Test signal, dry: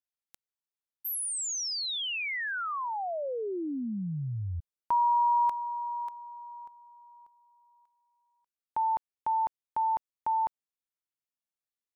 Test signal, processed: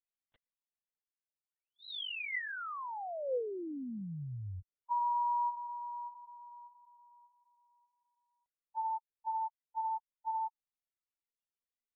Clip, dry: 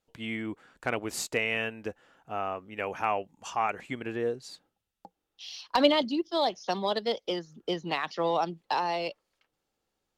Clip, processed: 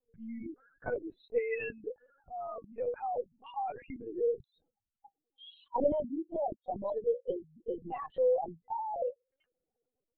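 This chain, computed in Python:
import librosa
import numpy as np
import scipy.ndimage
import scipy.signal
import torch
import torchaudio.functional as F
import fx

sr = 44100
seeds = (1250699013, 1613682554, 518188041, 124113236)

y = fx.spec_expand(x, sr, power=3.9)
y = fx.small_body(y, sr, hz=(490.0, 2000.0), ring_ms=45, db=10)
y = fx.lpc_vocoder(y, sr, seeds[0], excitation='pitch_kept', order=10)
y = y * librosa.db_to_amplitude(-7.0)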